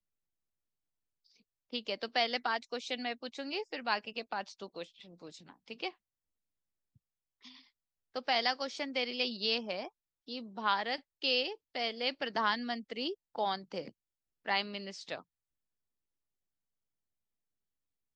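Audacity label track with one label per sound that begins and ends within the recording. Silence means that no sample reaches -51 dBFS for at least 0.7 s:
1.730000	5.910000	sound
7.430000	15.210000	sound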